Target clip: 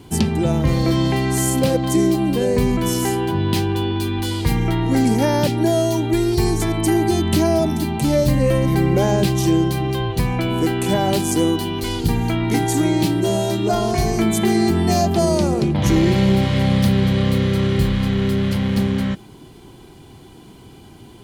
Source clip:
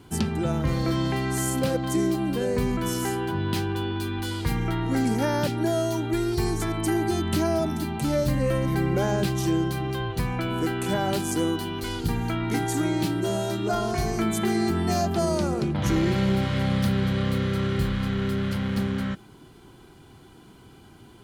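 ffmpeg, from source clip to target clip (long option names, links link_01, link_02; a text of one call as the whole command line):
ffmpeg -i in.wav -af "equalizer=frequency=1400:width=2.7:gain=-8,volume=7.5dB" out.wav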